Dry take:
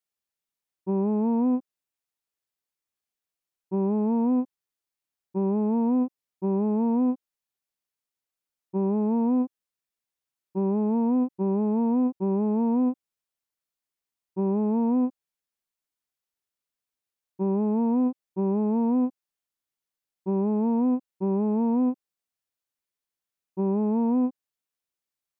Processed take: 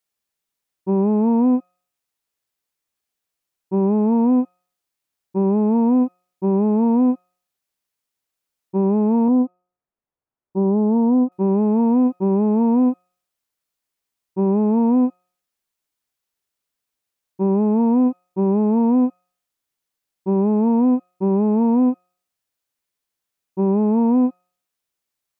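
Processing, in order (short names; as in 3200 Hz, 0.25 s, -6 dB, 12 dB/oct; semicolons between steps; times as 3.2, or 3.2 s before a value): de-hum 179.6 Hz, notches 38; 9.28–11.32 LPF 1100 Hz 12 dB/oct; gain +7 dB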